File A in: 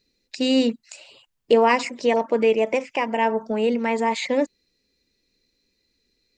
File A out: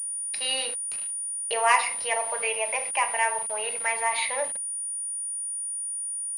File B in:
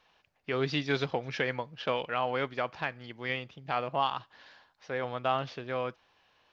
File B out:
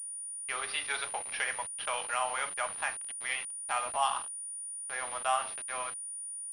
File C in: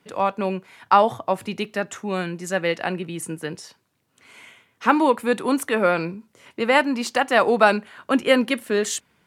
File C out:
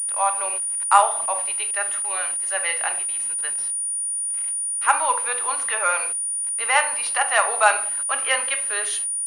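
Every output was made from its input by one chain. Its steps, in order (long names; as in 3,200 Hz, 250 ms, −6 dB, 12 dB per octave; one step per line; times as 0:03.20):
high-pass filter 750 Hz 24 dB per octave
rectangular room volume 760 cubic metres, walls furnished, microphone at 1.3 metres
centre clipping without the shift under −40.5 dBFS
switching amplifier with a slow clock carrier 9,500 Hz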